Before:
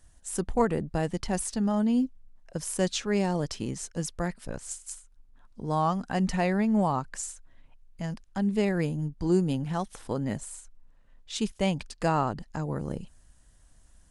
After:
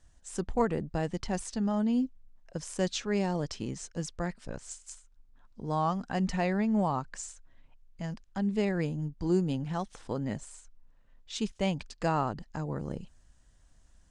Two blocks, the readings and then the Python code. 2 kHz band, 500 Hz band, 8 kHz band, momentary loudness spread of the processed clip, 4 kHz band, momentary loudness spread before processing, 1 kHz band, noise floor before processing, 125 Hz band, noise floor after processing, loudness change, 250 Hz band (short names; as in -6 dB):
-3.0 dB, -3.0 dB, -6.0 dB, 13 LU, -3.0 dB, 12 LU, -3.0 dB, -59 dBFS, -3.0 dB, -62 dBFS, -3.0 dB, -3.0 dB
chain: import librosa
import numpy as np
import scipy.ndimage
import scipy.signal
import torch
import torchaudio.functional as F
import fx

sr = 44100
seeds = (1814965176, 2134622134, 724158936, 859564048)

y = scipy.signal.sosfilt(scipy.signal.butter(4, 7800.0, 'lowpass', fs=sr, output='sos'), x)
y = y * 10.0 ** (-3.0 / 20.0)